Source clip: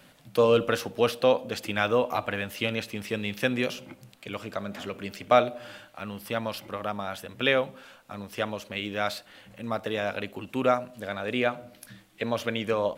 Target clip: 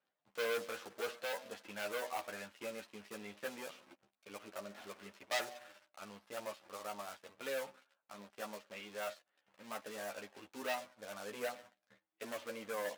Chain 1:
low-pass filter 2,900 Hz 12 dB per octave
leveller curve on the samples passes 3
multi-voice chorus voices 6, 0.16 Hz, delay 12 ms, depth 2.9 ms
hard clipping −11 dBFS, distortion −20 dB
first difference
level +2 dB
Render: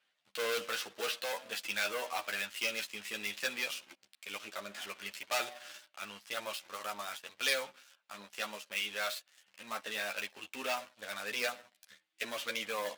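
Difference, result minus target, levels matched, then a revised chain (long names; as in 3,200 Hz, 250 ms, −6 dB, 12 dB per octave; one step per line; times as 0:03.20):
4,000 Hz band +4.5 dB
low-pass filter 910 Hz 12 dB per octave
leveller curve on the samples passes 3
multi-voice chorus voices 6, 0.16 Hz, delay 12 ms, depth 2.9 ms
hard clipping −11 dBFS, distortion −30 dB
first difference
level +2 dB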